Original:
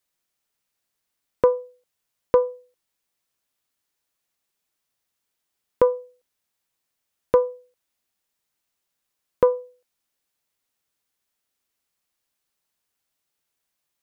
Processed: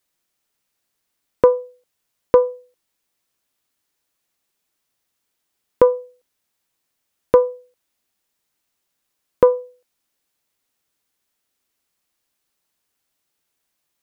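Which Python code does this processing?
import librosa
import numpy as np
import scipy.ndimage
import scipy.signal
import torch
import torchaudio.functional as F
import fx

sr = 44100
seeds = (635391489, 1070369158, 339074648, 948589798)

y = fx.peak_eq(x, sr, hz=300.0, db=2.5, octaves=0.99)
y = F.gain(torch.from_numpy(y), 4.0).numpy()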